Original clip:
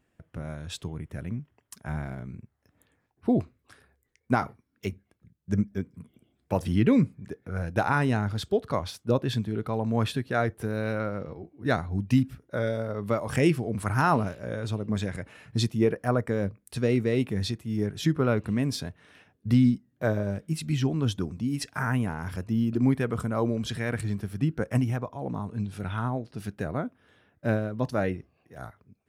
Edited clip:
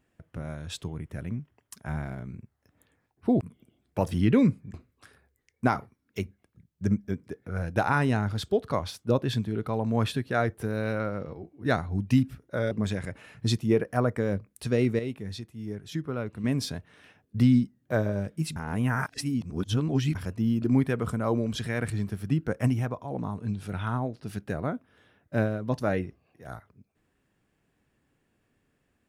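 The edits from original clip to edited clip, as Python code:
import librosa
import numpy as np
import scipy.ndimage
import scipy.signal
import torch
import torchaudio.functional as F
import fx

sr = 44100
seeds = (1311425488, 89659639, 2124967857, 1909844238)

y = fx.edit(x, sr, fx.move(start_s=5.95, length_s=1.33, to_s=3.41),
    fx.cut(start_s=12.71, length_s=2.11),
    fx.clip_gain(start_s=17.1, length_s=1.45, db=-8.0),
    fx.reverse_span(start_s=20.67, length_s=1.59), tone=tone)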